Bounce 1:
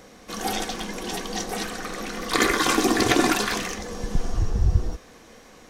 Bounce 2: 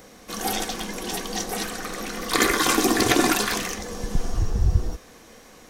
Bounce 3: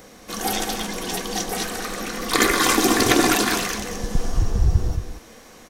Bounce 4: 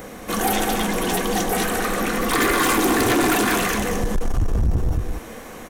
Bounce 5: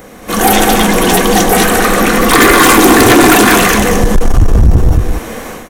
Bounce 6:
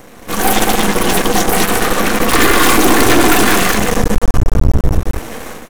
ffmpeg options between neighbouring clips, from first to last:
-af "highshelf=f=10k:g=10"
-af "aecho=1:1:223:0.398,volume=2dB"
-filter_complex "[0:a]equalizer=f=5k:t=o:w=1.1:g=-10.5,asplit=2[a][b];[b]acompressor=threshold=-26dB:ratio=6,volume=1.5dB[c];[a][c]amix=inputs=2:normalize=0,asoftclip=type=tanh:threshold=-17.5dB,volume=3dB"
-af "dynaudnorm=f=220:g=3:m=13dB,volume=1.5dB"
-af "aeval=exprs='max(val(0),0)':c=same"

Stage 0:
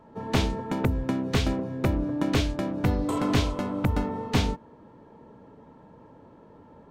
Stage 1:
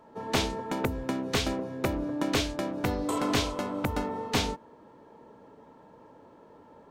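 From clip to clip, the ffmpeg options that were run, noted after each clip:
-af "bass=f=250:g=-9,treble=f=4k:g=4"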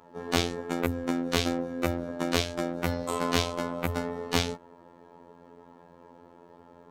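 -af "afftfilt=real='hypot(re,im)*cos(PI*b)':imag='0':win_size=2048:overlap=0.75,volume=4dB"

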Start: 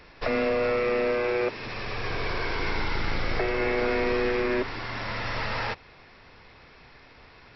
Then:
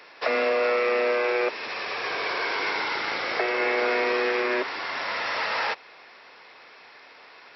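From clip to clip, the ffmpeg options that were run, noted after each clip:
-af "highpass=490,volume=4.5dB"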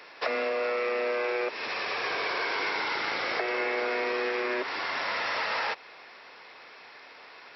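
-af "acompressor=threshold=-26dB:ratio=6"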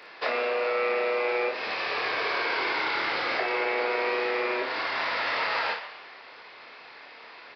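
-filter_complex "[0:a]asplit=2[a][b];[b]asplit=5[c][d][e][f][g];[c]adelay=117,afreqshift=140,volume=-13dB[h];[d]adelay=234,afreqshift=280,volume=-19.6dB[i];[e]adelay=351,afreqshift=420,volume=-26.1dB[j];[f]adelay=468,afreqshift=560,volume=-32.7dB[k];[g]adelay=585,afreqshift=700,volume=-39.2dB[l];[h][i][j][k][l]amix=inputs=5:normalize=0[m];[a][m]amix=inputs=2:normalize=0,aresample=11025,aresample=44100,asplit=2[n][o];[o]aecho=0:1:26|57:0.596|0.473[p];[n][p]amix=inputs=2:normalize=0"

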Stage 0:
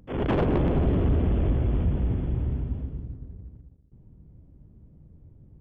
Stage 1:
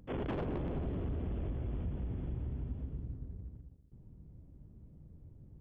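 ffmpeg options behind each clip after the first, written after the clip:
-af "acompressor=threshold=-32dB:ratio=5,volume=-3.5dB"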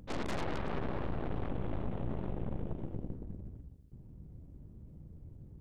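-af "aeval=exprs='0.0355*(cos(1*acos(clip(val(0)/0.0355,-1,1)))-cos(1*PI/2))+0.0178*(cos(3*acos(clip(val(0)/0.0355,-1,1)))-cos(3*PI/2))+0.0178*(cos(4*acos(clip(val(0)/0.0355,-1,1)))-cos(4*PI/2))+0.0141*(cos(5*acos(clip(val(0)/0.0355,-1,1)))-cos(5*PI/2))+0.0178*(cos(7*acos(clip(val(0)/0.0355,-1,1)))-cos(7*PI/2))':c=same,volume=-2dB"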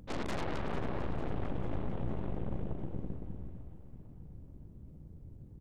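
-af "aecho=1:1:448|896|1344|1792|2240|2688:0.2|0.11|0.0604|0.0332|0.0183|0.01"

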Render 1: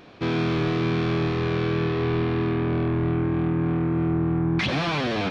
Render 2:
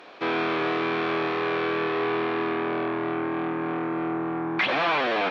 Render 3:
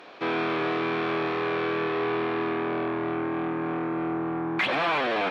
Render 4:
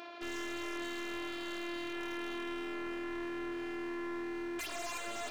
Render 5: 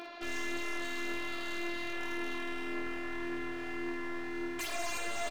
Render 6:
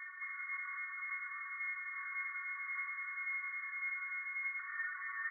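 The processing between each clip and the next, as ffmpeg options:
-filter_complex "[0:a]highpass=530,aemphasis=mode=reproduction:type=cd,acrossover=split=3600[a][b];[b]acompressor=threshold=-53dB:ratio=4:attack=1:release=60[c];[a][c]amix=inputs=2:normalize=0,volume=5.5dB"
-filter_complex "[0:a]lowshelf=f=140:g=4,asplit=2[a][b];[b]asoftclip=type=tanh:threshold=-28.5dB,volume=-11dB[c];[a][c]amix=inputs=2:normalize=0,volume=-2.5dB"
-af "afftfilt=real='hypot(re,im)*cos(PI*b)':imag='0':win_size=512:overlap=0.75,aeval=exprs='0.0355*(abs(mod(val(0)/0.0355+3,4)-2)-1)':c=same,alimiter=level_in=15dB:limit=-24dB:level=0:latency=1:release=356,volume=-15dB,volume=4.5dB"
-filter_complex "[0:a]aphaser=in_gain=1:out_gain=1:delay=1.8:decay=0.23:speed=1.8:type=triangular,asplit=2[a][b];[b]adelay=15,volume=-10dB[c];[a][c]amix=inputs=2:normalize=0,asplit=2[d][e];[e]aecho=0:1:45|57:0.237|0.282[f];[d][f]amix=inputs=2:normalize=0,volume=2dB"
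-af "lowpass=f=2.1k:t=q:w=0.5098,lowpass=f=2.1k:t=q:w=0.6013,lowpass=f=2.1k:t=q:w=0.9,lowpass=f=2.1k:t=q:w=2.563,afreqshift=-2500,flanger=delay=9.1:depth=4:regen=-41:speed=0.6:shape=triangular,afftfilt=real='re*eq(mod(floor(b*sr/1024/1100),2),1)':imag='im*eq(mod(floor(b*sr/1024/1100),2),1)':win_size=1024:overlap=0.75,volume=3dB"

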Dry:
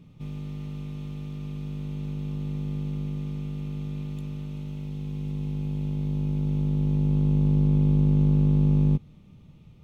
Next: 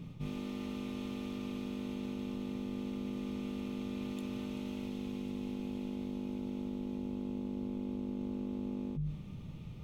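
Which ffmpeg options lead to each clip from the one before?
-af "bandreject=f=50:t=h:w=6,bandreject=f=100:t=h:w=6,bandreject=f=150:t=h:w=6,areverse,acompressor=threshold=-40dB:ratio=12,areverse,volume=5.5dB"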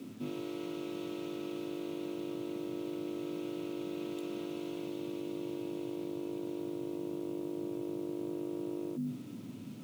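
-af "afreqshift=99,acrusher=bits=9:mix=0:aa=0.000001"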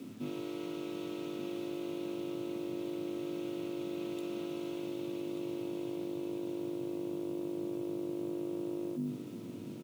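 -af "aecho=1:1:1186:0.299"

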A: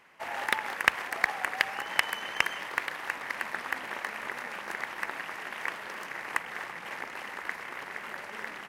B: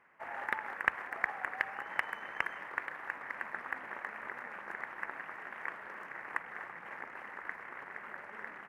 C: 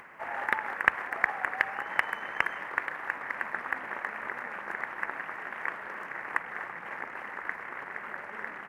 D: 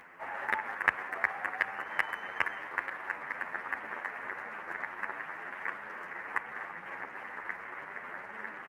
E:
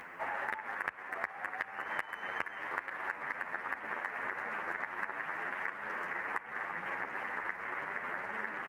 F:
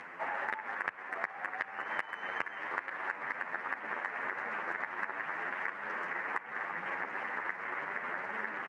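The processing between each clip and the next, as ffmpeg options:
-af "highshelf=f=2.6k:t=q:w=1.5:g=-13,volume=-7.5dB"
-af "acompressor=mode=upward:threshold=-48dB:ratio=2.5,volume=6.5dB"
-filter_complex "[0:a]asplit=2[a][b];[b]adelay=9.6,afreqshift=1.5[c];[a][c]amix=inputs=2:normalize=1"
-af "acompressor=threshold=-39dB:ratio=10,volume=5.5dB"
-af "highpass=130,lowpass=6.7k,volume=1dB"

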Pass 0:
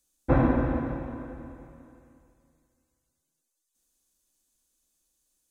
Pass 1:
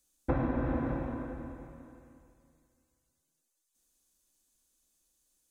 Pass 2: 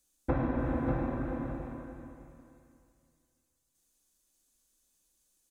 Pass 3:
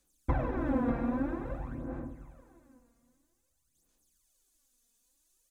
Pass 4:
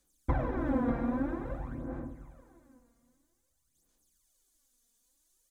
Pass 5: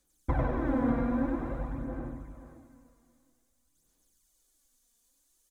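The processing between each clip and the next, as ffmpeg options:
-af "acompressor=threshold=-26dB:ratio=10"
-af "aecho=1:1:589:0.531"
-af "aphaser=in_gain=1:out_gain=1:delay=4.3:decay=0.66:speed=0.51:type=sinusoidal,volume=-2dB"
-af "bandreject=f=2.6k:w=13"
-af "aecho=1:1:96|530:0.708|0.224"

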